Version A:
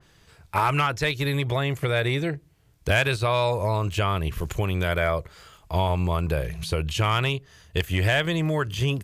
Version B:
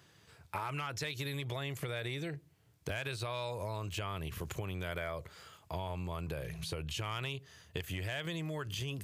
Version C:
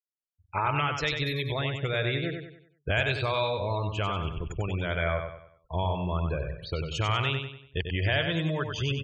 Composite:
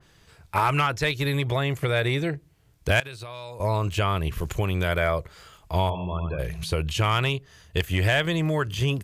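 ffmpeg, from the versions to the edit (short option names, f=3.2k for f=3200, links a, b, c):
-filter_complex "[0:a]asplit=3[a][b][c];[a]atrim=end=3.002[d];[1:a]atrim=start=2.998:end=3.602[e];[b]atrim=start=3.598:end=5.902[f];[2:a]atrim=start=5.898:end=6.392[g];[c]atrim=start=6.388[h];[d][e]acrossfade=d=0.004:c1=hsin:c2=hsin[i];[i][f]acrossfade=d=0.004:c1=hsin:c2=hsin[j];[j][g]acrossfade=d=0.004:c1=hsin:c2=hsin[k];[k][h]acrossfade=d=0.004:c1=hsin:c2=hsin"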